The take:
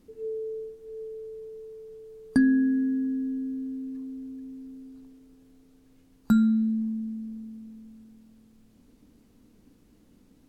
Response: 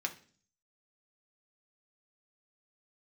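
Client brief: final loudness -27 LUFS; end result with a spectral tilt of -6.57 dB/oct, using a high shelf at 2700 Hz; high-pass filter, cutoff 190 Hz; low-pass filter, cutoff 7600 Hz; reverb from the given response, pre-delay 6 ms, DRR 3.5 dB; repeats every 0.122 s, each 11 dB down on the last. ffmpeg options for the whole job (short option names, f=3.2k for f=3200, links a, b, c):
-filter_complex "[0:a]highpass=190,lowpass=7.6k,highshelf=f=2.7k:g=-8,aecho=1:1:122|244|366:0.282|0.0789|0.0221,asplit=2[a][b];[1:a]atrim=start_sample=2205,adelay=6[c];[b][c]afir=irnorm=-1:irlink=0,volume=-6dB[d];[a][d]amix=inputs=2:normalize=0,volume=-1dB"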